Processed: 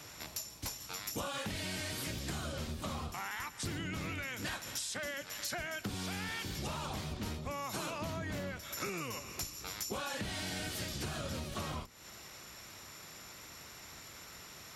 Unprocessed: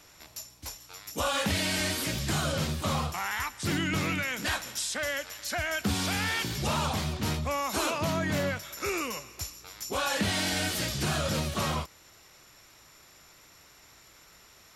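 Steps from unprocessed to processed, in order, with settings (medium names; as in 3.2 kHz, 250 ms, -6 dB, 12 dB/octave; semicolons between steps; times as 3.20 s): octave divider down 1 oct, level +3 dB; high-pass 110 Hz 6 dB/octave; compression 10:1, threshold -41 dBFS, peak gain reduction 18.5 dB; trim +4.5 dB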